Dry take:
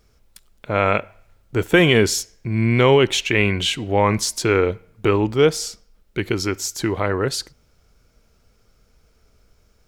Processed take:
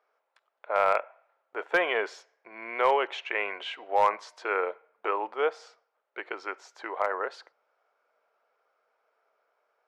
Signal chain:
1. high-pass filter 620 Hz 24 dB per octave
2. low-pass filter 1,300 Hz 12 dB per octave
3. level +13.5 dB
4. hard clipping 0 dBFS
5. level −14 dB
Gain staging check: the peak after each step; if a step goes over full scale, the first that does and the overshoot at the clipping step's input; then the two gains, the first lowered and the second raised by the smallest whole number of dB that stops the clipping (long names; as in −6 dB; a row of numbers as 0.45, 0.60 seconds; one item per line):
−5.0, −9.5, +4.0, 0.0, −14.0 dBFS
step 3, 4.0 dB
step 3 +9.5 dB, step 5 −10 dB